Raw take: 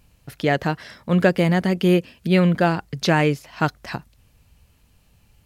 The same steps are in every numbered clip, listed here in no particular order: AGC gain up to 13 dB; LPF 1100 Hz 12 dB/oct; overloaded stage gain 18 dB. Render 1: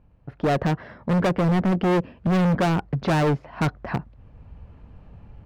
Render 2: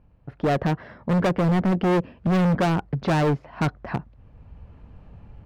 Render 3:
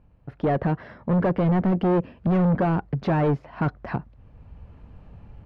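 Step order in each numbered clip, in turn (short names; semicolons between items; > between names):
LPF > AGC > overloaded stage; AGC > LPF > overloaded stage; AGC > overloaded stage > LPF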